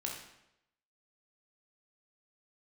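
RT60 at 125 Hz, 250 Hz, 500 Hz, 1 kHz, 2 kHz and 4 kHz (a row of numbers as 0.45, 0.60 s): 0.85, 0.80, 0.85, 0.80, 0.80, 0.70 s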